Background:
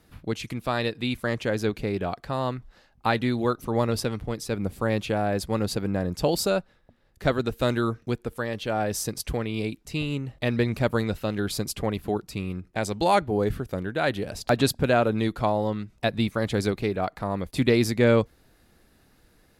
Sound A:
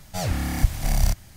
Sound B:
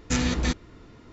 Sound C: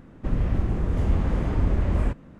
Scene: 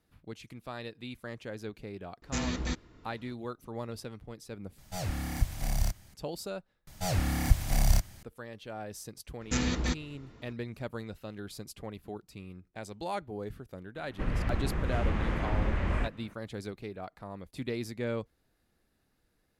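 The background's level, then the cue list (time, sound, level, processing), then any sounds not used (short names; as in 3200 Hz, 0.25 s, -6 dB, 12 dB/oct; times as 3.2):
background -14.5 dB
2.22 add B -8 dB
4.78 replace with A -8.5 dB
6.87 replace with A -3.5 dB
9.41 add B -5 dB
13.95 add C -7.5 dB + bell 2100 Hz +11.5 dB 2.5 oct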